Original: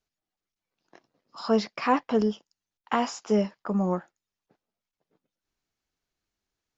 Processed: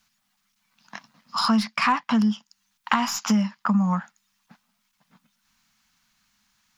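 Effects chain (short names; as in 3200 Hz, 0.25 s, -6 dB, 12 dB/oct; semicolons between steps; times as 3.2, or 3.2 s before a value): tracing distortion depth 0.039 ms; EQ curve 100 Hz 0 dB, 220 Hz +13 dB, 370 Hz -18 dB, 990 Hz +11 dB; compressor 4:1, threshold -30 dBFS, peak gain reduction 17 dB; gain +8.5 dB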